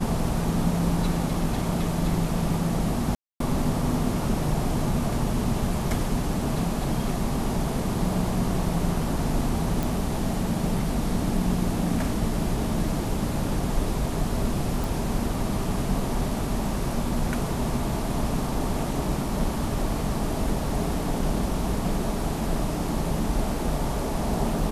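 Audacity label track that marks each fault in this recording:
3.150000	3.400000	drop-out 253 ms
9.830000	9.830000	click
14.840000	14.840000	click

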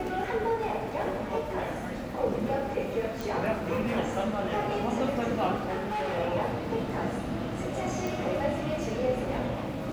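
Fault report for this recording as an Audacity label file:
3.210000	3.210000	click
5.570000	6.180000	clipping −28 dBFS
8.070000	8.070000	click

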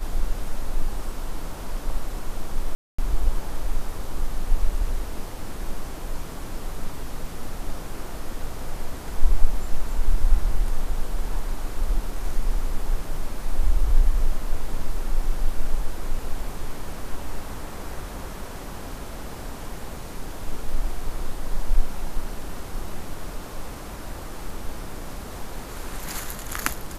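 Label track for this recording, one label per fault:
2.750000	2.980000	drop-out 235 ms

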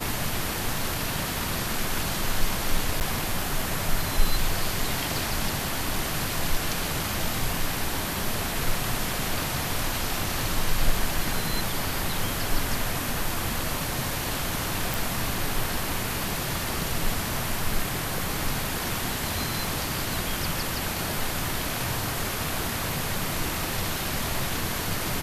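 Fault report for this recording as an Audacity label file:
3.000000	3.010000	drop-out 9.4 ms
14.940000	14.940000	click

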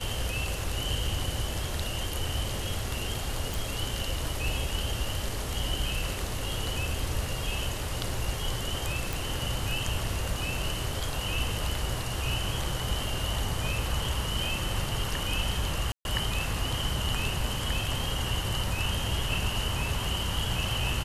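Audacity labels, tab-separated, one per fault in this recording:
3.540000	3.540000	click
9.130000	9.130000	click
15.920000	16.050000	drop-out 131 ms

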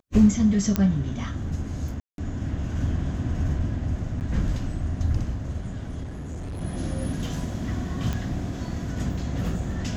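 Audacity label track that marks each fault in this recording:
0.760000	0.760000	click −8 dBFS
2.000000	2.180000	drop-out 182 ms
4.200000	4.210000	drop-out 9.1 ms
6.020000	6.620000	clipping −30.5 dBFS
8.130000	8.130000	click −16 dBFS

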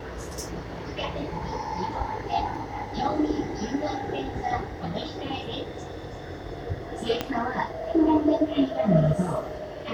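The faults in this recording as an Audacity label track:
7.210000	7.210000	click −11 dBFS

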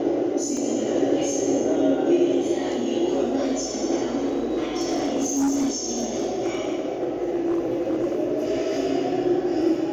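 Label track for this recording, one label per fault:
0.570000	0.570000	drop-out 2.7 ms
4.260000	8.200000	clipping −18.5 dBFS

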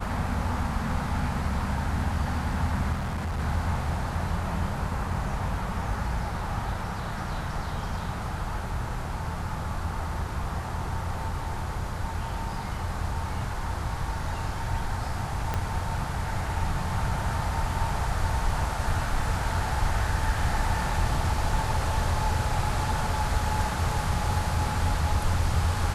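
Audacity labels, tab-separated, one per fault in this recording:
2.920000	3.400000	clipping −27 dBFS
15.540000	15.540000	click −14 dBFS

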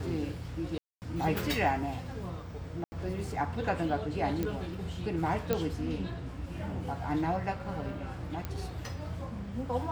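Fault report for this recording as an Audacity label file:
0.780000	1.020000	drop-out 239 ms
2.840000	2.920000	drop-out 80 ms
4.430000	4.430000	click −19 dBFS
5.530000	5.530000	click −14 dBFS
8.450000	8.450000	click −21 dBFS

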